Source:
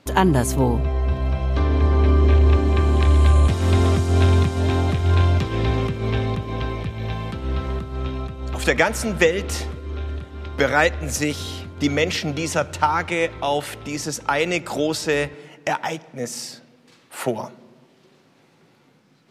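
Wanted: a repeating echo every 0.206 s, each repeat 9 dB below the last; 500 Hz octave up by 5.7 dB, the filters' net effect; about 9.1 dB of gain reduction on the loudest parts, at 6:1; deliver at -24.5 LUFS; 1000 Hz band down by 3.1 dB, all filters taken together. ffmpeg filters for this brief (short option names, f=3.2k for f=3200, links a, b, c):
-af "equalizer=f=500:t=o:g=8.5,equalizer=f=1k:t=o:g=-7.5,acompressor=threshold=-16dB:ratio=6,aecho=1:1:206|412|618|824:0.355|0.124|0.0435|0.0152,volume=-2.5dB"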